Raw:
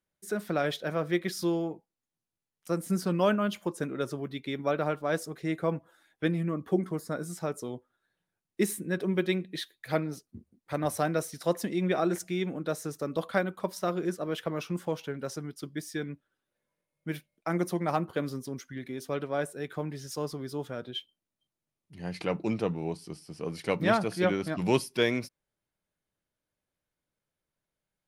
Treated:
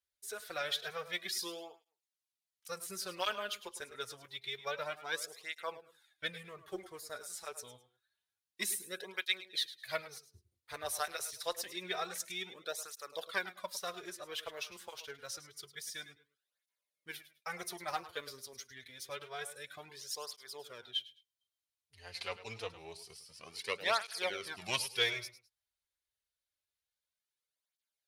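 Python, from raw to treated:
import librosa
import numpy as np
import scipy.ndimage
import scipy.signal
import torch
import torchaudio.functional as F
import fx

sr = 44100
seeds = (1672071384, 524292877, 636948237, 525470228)

p1 = fx.cheby_harmonics(x, sr, harmonics=(3,), levels_db=(-20,), full_scale_db=-11.0)
p2 = fx.tone_stack(p1, sr, knobs='10-0-10')
p3 = np.sign(p2) * np.maximum(np.abs(p2) - 10.0 ** (-58.5 / 20.0), 0.0)
p4 = p2 + F.gain(torch.from_numpy(p3), -8.5).numpy()
p5 = fx.graphic_eq_15(p4, sr, hz=(160, 400, 4000), db=(-11, 8, 5))
p6 = p5 + fx.echo_feedback(p5, sr, ms=105, feedback_pct=23, wet_db=-14.5, dry=0)
p7 = fx.flanger_cancel(p6, sr, hz=0.27, depth_ms=6.6)
y = F.gain(torch.from_numpy(p7), 4.0).numpy()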